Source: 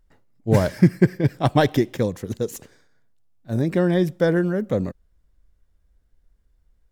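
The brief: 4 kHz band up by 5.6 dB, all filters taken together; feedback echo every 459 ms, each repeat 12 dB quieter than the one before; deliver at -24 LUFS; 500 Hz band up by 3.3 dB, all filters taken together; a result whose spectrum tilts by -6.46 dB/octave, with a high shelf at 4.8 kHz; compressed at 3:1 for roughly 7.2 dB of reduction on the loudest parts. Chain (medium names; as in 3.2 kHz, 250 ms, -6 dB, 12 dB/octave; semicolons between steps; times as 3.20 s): peaking EQ 500 Hz +4 dB; peaking EQ 4 kHz +5.5 dB; treble shelf 4.8 kHz +3 dB; compression 3:1, threshold -19 dBFS; feedback delay 459 ms, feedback 25%, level -12 dB; trim +0.5 dB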